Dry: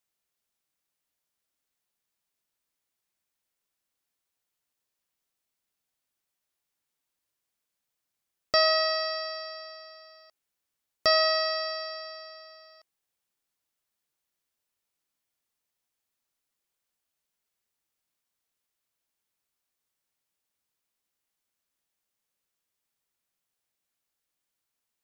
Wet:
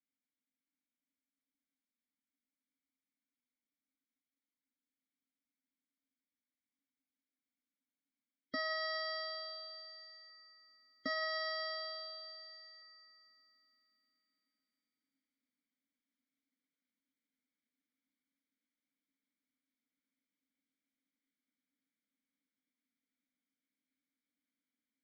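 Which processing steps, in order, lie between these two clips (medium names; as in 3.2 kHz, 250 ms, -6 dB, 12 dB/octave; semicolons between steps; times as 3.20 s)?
low-pass 3.8 kHz 12 dB/octave; peaking EQ 1.8 kHz -4 dB 0.24 oct; in parallel at +1 dB: gain riding within 5 dB 0.5 s; on the sum: waveshaping leveller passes 1; peak limiter -12.5 dBFS, peak gain reduction 7 dB; static phaser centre 550 Hz, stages 8; spectral gate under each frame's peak -30 dB strong; vowel filter i; on a send: feedback echo behind a high-pass 232 ms, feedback 60%, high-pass 2.5 kHz, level -8 dB; on the sum: trim +8 dB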